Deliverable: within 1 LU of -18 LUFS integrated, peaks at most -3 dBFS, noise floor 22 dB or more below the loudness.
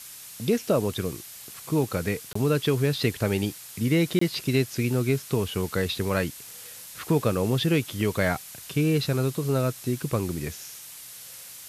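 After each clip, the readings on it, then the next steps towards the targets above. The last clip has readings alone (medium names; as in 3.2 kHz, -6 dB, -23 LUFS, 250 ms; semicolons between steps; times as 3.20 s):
dropouts 2; longest dropout 24 ms; noise floor -43 dBFS; noise floor target -48 dBFS; loudness -26.0 LUFS; peak level -10.0 dBFS; loudness target -18.0 LUFS
-> interpolate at 2.33/4.19 s, 24 ms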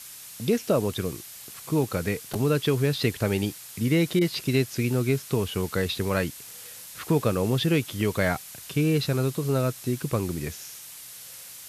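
dropouts 0; noise floor -43 dBFS; noise floor target -48 dBFS
-> noise reduction 6 dB, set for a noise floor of -43 dBFS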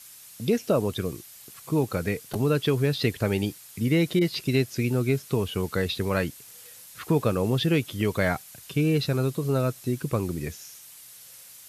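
noise floor -48 dBFS; noise floor target -49 dBFS
-> noise reduction 6 dB, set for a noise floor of -48 dBFS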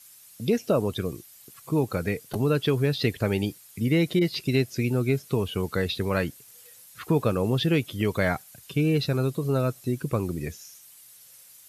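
noise floor -52 dBFS; loudness -26.5 LUFS; peak level -10.0 dBFS; loudness target -18.0 LUFS
-> trim +8.5 dB; peak limiter -3 dBFS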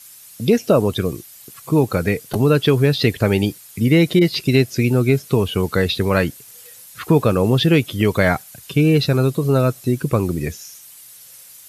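loudness -18.0 LUFS; peak level -3.0 dBFS; noise floor -43 dBFS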